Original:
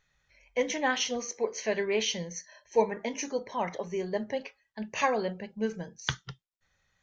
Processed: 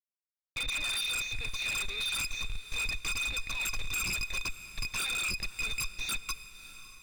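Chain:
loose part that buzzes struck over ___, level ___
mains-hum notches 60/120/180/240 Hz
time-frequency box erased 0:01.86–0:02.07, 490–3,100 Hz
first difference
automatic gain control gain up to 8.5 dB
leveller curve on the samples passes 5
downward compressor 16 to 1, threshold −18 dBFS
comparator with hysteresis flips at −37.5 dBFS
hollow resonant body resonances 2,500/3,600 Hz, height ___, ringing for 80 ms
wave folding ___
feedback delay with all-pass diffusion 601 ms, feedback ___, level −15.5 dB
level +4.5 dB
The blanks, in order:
−39 dBFS, −22 dBFS, 15 dB, −32 dBFS, 53%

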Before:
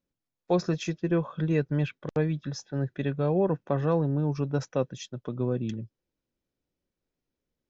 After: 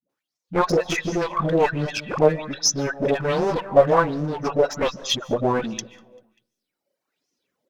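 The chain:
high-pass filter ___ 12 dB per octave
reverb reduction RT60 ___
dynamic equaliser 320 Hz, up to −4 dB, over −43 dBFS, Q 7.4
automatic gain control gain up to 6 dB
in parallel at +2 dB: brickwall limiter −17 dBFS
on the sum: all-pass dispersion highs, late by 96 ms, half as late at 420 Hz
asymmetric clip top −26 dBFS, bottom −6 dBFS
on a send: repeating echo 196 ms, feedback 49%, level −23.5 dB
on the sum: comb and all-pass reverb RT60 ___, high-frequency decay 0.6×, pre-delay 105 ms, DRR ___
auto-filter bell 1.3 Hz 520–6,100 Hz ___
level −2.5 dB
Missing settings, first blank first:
200 Hz, 1.4 s, 0.65 s, 17 dB, +15 dB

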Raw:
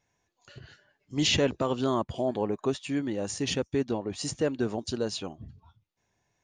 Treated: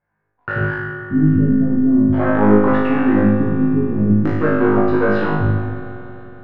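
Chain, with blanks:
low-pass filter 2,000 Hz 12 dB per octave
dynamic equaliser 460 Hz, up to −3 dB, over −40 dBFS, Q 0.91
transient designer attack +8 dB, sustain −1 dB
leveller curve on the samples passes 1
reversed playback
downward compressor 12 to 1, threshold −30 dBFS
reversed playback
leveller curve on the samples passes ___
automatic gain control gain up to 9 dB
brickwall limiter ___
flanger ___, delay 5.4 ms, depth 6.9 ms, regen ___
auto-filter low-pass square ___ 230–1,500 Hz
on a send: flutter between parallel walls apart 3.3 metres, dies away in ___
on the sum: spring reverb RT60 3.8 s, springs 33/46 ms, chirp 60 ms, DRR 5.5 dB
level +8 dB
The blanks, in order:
3, −22 dBFS, 0.39 Hz, −48%, 0.47 Hz, 0.94 s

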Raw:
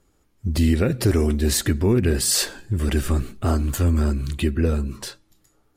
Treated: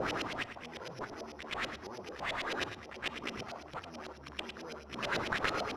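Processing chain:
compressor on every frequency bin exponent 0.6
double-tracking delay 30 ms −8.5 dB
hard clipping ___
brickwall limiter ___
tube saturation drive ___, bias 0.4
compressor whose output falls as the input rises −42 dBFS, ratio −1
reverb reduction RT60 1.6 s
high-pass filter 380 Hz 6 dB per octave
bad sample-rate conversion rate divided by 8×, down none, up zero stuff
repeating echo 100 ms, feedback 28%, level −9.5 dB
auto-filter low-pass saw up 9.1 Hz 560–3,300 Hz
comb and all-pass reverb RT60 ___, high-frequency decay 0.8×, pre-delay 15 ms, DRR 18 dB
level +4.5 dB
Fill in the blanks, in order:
−17 dBFS, −22.5 dBFS, 31 dB, 0.43 s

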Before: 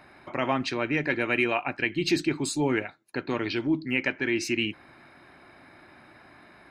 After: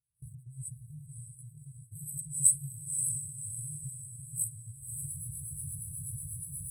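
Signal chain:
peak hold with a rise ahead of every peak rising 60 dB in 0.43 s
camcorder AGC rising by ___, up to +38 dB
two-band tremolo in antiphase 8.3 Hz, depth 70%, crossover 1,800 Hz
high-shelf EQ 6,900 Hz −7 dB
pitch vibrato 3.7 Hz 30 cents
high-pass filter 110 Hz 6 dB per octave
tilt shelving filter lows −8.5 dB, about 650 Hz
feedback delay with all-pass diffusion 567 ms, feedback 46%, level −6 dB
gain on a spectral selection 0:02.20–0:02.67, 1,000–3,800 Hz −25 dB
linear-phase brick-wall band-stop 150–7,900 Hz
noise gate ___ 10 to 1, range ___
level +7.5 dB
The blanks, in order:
75 dB per second, −57 dBFS, −26 dB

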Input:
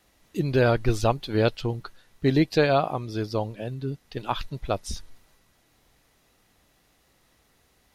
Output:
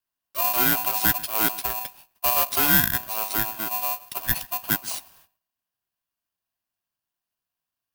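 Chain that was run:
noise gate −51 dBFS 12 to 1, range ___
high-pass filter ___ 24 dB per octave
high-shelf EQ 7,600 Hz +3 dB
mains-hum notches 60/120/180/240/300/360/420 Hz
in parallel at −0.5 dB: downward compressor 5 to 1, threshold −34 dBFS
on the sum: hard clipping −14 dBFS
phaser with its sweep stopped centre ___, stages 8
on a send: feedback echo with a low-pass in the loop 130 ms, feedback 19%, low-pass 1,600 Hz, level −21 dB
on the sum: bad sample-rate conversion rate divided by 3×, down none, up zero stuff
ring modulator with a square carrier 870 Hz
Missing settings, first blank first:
−30 dB, 110 Hz, 1,900 Hz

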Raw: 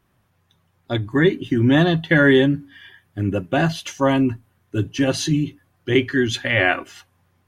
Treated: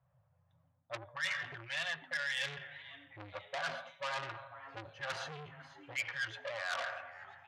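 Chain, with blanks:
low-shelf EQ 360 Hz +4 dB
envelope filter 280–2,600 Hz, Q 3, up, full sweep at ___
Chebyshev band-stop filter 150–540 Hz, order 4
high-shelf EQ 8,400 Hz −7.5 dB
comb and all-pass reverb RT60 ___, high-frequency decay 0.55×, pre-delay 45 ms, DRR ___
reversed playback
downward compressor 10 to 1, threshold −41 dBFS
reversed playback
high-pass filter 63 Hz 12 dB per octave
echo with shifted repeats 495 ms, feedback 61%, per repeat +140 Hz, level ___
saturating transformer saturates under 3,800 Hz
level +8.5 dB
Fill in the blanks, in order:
−8.5 dBFS, 0.94 s, 16.5 dB, −19 dB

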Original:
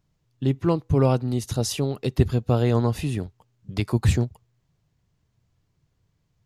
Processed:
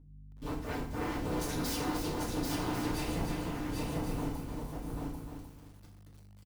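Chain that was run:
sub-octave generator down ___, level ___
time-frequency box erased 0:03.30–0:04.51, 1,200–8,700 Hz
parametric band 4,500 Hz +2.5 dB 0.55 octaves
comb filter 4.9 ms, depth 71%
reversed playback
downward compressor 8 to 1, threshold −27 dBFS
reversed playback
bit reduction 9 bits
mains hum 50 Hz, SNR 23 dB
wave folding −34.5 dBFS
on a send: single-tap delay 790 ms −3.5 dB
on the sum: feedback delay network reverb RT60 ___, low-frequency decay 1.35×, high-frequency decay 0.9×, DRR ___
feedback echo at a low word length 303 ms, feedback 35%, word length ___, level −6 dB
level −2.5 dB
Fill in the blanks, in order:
2 octaves, +3 dB, 0.51 s, −3.5 dB, 9 bits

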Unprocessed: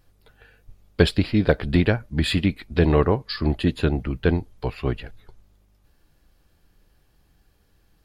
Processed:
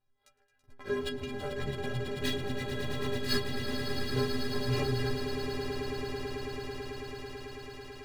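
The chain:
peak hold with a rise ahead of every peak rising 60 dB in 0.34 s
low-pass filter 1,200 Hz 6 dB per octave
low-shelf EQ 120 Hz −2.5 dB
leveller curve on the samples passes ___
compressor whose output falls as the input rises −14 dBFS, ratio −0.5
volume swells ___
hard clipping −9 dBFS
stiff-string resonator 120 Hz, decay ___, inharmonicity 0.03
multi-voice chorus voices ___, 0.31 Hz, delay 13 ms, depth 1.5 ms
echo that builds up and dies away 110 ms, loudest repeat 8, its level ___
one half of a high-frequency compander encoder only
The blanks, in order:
5, 158 ms, 0.43 s, 2, −10 dB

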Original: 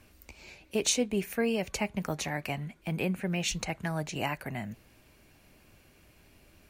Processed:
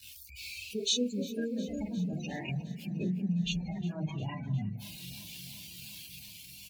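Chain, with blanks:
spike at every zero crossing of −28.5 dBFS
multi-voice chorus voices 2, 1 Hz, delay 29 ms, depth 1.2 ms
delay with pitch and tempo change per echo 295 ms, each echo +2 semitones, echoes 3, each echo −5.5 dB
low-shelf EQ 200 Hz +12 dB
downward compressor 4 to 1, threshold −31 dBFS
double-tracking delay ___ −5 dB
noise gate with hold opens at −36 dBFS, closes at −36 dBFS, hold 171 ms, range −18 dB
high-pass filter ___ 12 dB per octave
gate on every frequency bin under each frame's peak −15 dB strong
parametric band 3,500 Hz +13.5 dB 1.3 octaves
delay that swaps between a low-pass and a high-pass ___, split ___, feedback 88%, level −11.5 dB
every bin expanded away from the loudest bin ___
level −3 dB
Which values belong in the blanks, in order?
45 ms, 53 Hz, 178 ms, 1,600 Hz, 1.5 to 1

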